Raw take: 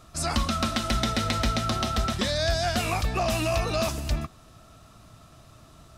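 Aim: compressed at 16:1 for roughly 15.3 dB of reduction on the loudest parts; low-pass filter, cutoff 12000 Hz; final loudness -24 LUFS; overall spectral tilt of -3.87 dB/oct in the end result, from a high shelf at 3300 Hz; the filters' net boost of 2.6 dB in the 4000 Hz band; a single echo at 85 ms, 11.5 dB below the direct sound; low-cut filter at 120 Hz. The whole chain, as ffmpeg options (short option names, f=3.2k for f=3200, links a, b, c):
-af "highpass=120,lowpass=12k,highshelf=f=3.3k:g=-8.5,equalizer=f=4k:t=o:g=9,acompressor=threshold=-38dB:ratio=16,aecho=1:1:85:0.266,volume=17dB"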